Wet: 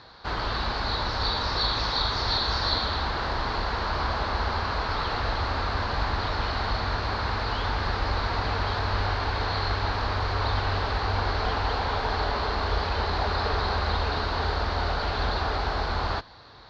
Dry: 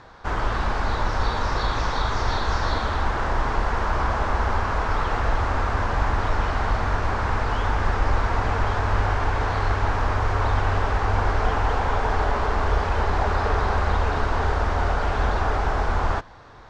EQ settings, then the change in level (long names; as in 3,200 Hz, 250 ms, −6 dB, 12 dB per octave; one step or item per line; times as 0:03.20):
high-pass filter 41 Hz
low-pass with resonance 4,300 Hz, resonance Q 6.8
−4.0 dB